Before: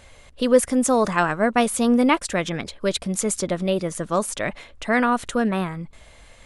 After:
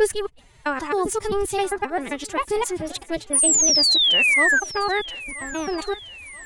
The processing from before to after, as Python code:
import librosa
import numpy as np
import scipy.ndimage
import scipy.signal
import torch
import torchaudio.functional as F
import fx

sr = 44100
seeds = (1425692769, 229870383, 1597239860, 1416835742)

p1 = fx.block_reorder(x, sr, ms=132.0, group=5)
p2 = fx.pitch_keep_formants(p1, sr, semitones=9.0)
p3 = fx.spec_paint(p2, sr, seeds[0], shape='fall', start_s=3.33, length_s=1.27, low_hz=1500.0, high_hz=10000.0, level_db=-14.0)
p4 = p3 + fx.echo_thinned(p3, sr, ms=975, feedback_pct=52, hz=540.0, wet_db=-17.0, dry=0)
y = F.gain(torch.from_numpy(p4), -3.5).numpy()